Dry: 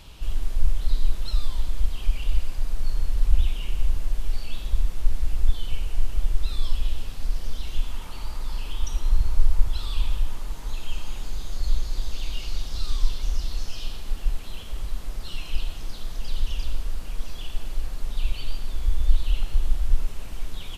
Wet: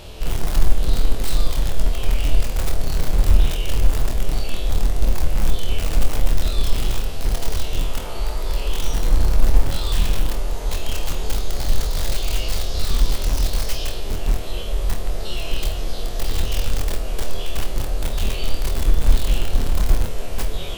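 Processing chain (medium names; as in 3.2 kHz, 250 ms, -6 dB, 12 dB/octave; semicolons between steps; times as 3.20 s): spectrogram pixelated in time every 50 ms; high-order bell 510 Hz +9 dB 1.2 oct; in parallel at -10 dB: integer overflow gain 21 dB; on the sum: flutter echo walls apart 4.3 m, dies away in 0.23 s; trim +5.5 dB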